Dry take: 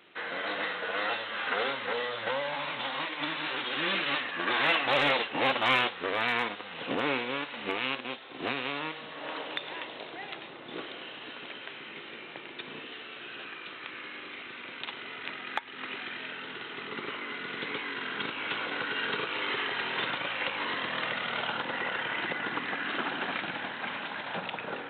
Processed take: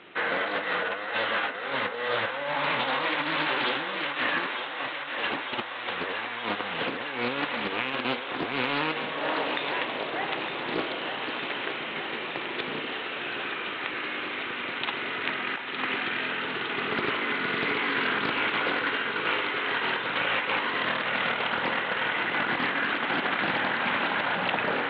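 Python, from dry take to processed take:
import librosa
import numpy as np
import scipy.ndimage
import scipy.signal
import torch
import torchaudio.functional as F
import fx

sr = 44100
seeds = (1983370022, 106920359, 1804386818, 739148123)

p1 = scipy.signal.sosfilt(scipy.signal.bessel(2, 2900.0, 'lowpass', norm='mag', fs=sr, output='sos'), x)
p2 = fx.over_compress(p1, sr, threshold_db=-36.0, ratio=-0.5)
p3 = p2 + fx.echo_thinned(p2, sr, ms=911, feedback_pct=81, hz=380.0, wet_db=-7.5, dry=0)
p4 = fx.doppler_dist(p3, sr, depth_ms=0.32)
y = p4 * 10.0 ** (7.0 / 20.0)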